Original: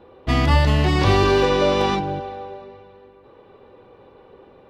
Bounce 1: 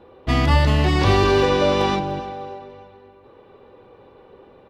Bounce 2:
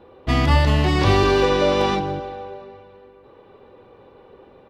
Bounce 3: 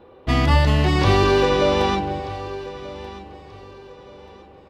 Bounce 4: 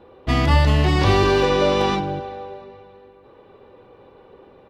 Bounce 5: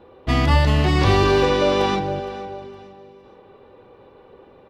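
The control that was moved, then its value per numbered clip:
feedback delay, time: 297 ms, 160 ms, 1234 ms, 67 ms, 464 ms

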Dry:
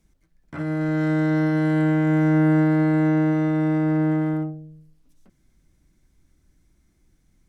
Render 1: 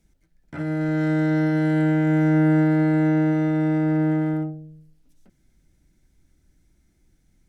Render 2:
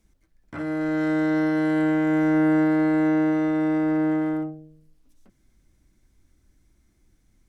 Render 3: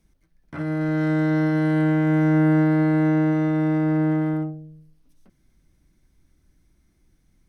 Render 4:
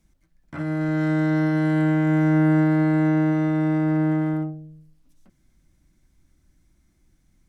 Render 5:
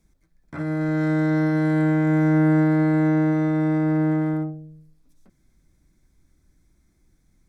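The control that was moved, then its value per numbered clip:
band-stop, frequency: 1.1 kHz, 160 Hz, 7.3 kHz, 430 Hz, 2.9 kHz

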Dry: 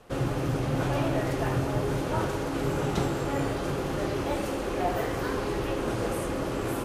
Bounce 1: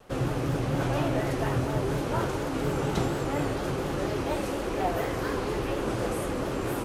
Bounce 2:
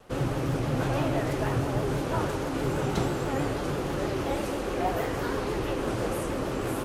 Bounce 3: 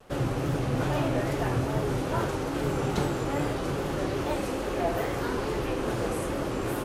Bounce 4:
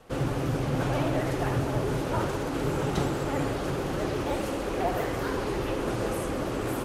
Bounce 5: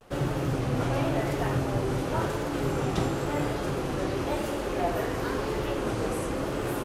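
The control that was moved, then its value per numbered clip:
vibrato, rate: 4.2 Hz, 6.2 Hz, 2.4 Hz, 15 Hz, 0.94 Hz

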